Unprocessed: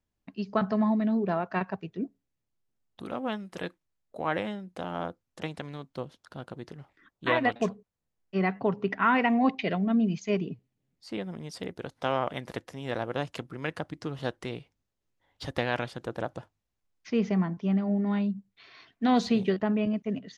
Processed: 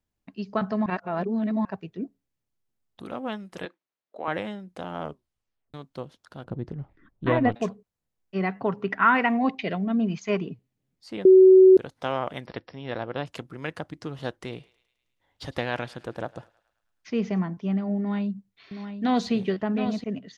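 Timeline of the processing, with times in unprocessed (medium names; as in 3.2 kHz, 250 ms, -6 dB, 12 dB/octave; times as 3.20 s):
0.86–1.65 s: reverse
3.65–4.28 s: band-pass 320–4100 Hz
5.00 s: tape stop 0.74 s
6.44–7.55 s: tilt EQ -4 dB/octave
8.59–9.37 s: peaking EQ 1.4 kHz +6 dB 1.1 oct
9.99–10.50 s: peaking EQ 1.2 kHz +11 dB 1.5 oct
11.25–11.77 s: bleep 376 Hz -9 dBFS
12.46–13.26 s: brick-wall FIR low-pass 5.7 kHz
14.40–17.39 s: thinning echo 106 ms, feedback 61%, high-pass 700 Hz, level -20.5 dB
17.99–20.04 s: delay 721 ms -9 dB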